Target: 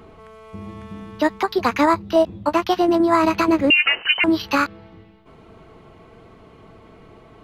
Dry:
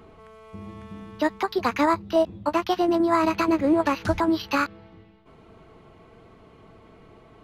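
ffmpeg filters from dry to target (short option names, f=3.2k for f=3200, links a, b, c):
-filter_complex "[0:a]asettb=1/sr,asplit=3[a][b][c];[a]atrim=end=3.704[d];[b]atrim=start=3.7:end=4.24,asetpts=PTS-STARTPTS,afade=t=in:d=0.004:c=qsin,afade=t=out:st=0.536:d=0.004:c=qsin,lowpass=f=2.6k:t=q:w=0.5098,lowpass=f=2.6k:t=q:w=0.6013,lowpass=f=2.6k:t=q:w=0.9,lowpass=f=2.6k:t=q:w=2.563,afreqshift=-3100[e];[c]atrim=start=4.236[f];[d][e]acrossfade=d=0.004:c1=hsin:c2=qsin[g];[g][f]acrossfade=d=0.004:c1=qsin:c2=hsin,volume=4.5dB"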